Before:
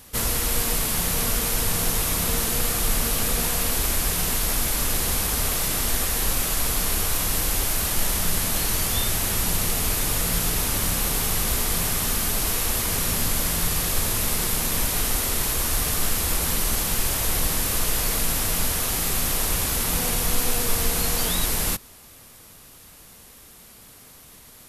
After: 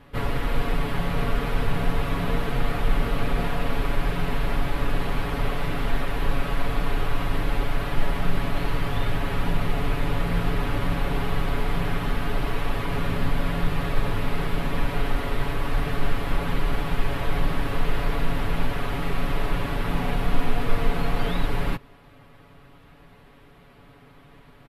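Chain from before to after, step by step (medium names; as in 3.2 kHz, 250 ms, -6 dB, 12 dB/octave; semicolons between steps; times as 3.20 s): distance through air 500 m; comb 7.1 ms, depth 78%; trim +1.5 dB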